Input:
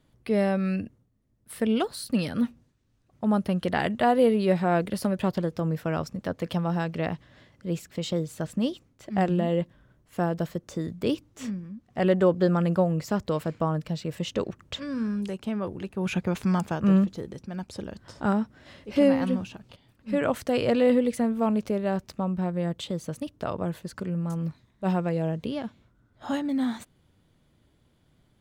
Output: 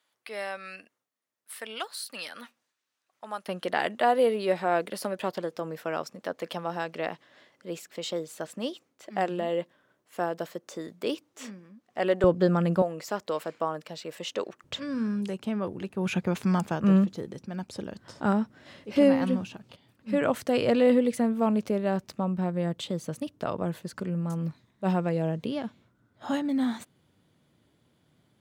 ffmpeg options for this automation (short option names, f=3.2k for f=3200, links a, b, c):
-af "asetnsamples=n=441:p=0,asendcmd='3.48 highpass f 390;12.24 highpass f 130;12.82 highpass f 430;14.64 highpass f 120',highpass=1k"